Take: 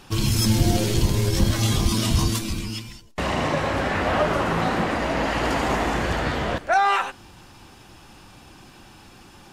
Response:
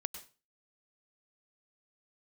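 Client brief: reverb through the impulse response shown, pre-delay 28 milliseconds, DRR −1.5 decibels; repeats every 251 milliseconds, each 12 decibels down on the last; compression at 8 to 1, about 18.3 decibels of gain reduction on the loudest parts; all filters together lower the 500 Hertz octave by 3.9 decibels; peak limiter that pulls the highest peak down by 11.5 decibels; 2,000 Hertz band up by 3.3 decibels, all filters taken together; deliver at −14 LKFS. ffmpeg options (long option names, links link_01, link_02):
-filter_complex "[0:a]equalizer=frequency=500:width_type=o:gain=-5.5,equalizer=frequency=2000:width_type=o:gain=4.5,acompressor=threshold=-34dB:ratio=8,alimiter=level_in=7.5dB:limit=-24dB:level=0:latency=1,volume=-7.5dB,aecho=1:1:251|502|753:0.251|0.0628|0.0157,asplit=2[link_01][link_02];[1:a]atrim=start_sample=2205,adelay=28[link_03];[link_02][link_03]afir=irnorm=-1:irlink=0,volume=2dB[link_04];[link_01][link_04]amix=inputs=2:normalize=0,volume=23dB"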